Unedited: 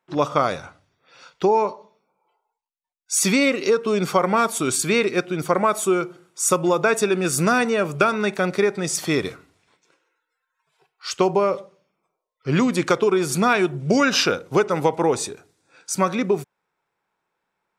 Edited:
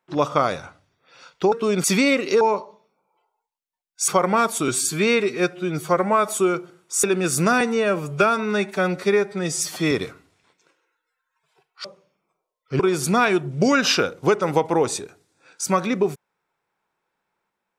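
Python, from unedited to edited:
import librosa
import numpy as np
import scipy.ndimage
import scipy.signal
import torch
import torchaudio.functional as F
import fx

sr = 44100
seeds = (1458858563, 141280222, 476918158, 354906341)

y = fx.edit(x, sr, fx.swap(start_s=1.52, length_s=1.67, other_s=3.76, other_length_s=0.32),
    fx.stretch_span(start_s=4.68, length_s=1.07, factor=1.5),
    fx.cut(start_s=6.5, length_s=0.54),
    fx.stretch_span(start_s=7.61, length_s=1.54, factor=1.5),
    fx.cut(start_s=11.08, length_s=0.51),
    fx.cut(start_s=12.54, length_s=0.54), tone=tone)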